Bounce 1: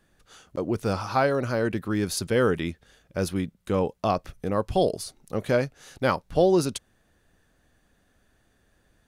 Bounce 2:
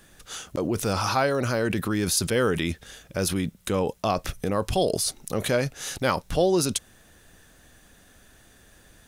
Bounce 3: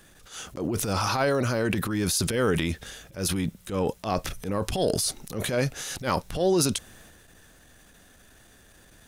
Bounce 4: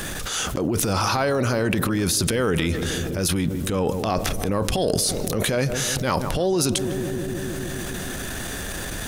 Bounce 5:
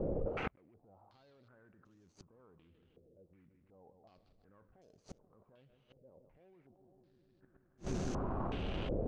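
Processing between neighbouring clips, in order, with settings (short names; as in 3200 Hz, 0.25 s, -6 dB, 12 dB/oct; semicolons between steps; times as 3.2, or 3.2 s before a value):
high shelf 2900 Hz +9 dB; notch 4500 Hz, Q 21; in parallel at +0.5 dB: negative-ratio compressor -34 dBFS, ratio -1; on the sum: gain -2.5 dB
transient shaper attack -12 dB, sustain +5 dB
darkening echo 0.155 s, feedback 75%, low-pass 880 Hz, level -14.5 dB; fast leveller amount 70%
median filter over 25 samples; flipped gate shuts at -21 dBFS, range -38 dB; stepped low-pass 2.7 Hz 520–6400 Hz; gain -5 dB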